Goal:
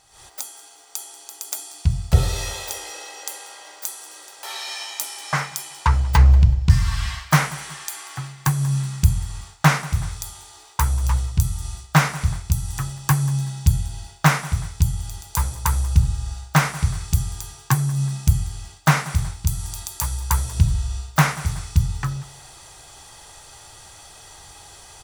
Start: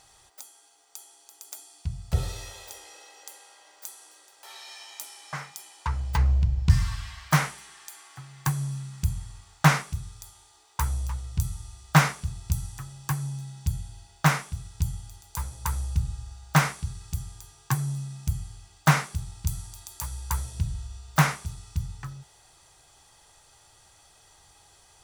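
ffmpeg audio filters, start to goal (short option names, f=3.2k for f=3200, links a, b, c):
-af "aecho=1:1:187|374:0.0841|0.0219,dynaudnorm=f=110:g=3:m=14dB,volume=-1dB"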